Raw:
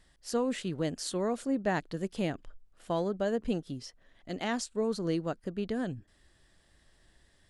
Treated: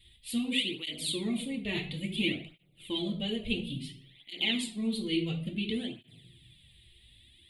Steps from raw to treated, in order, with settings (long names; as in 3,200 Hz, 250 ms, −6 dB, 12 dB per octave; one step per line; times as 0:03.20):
drawn EQ curve 100 Hz 0 dB, 200 Hz −10 dB, 350 Hz −8 dB, 550 Hz −21 dB, 910 Hz −21 dB, 1,600 Hz −24 dB, 2,200 Hz +4 dB, 3,600 Hz +10 dB, 5,700 Hz −23 dB, 9,300 Hz 0 dB
convolution reverb RT60 0.70 s, pre-delay 4 ms, DRR 0 dB
through-zero flanger with one copy inverted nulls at 0.58 Hz, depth 3.9 ms
level +7.5 dB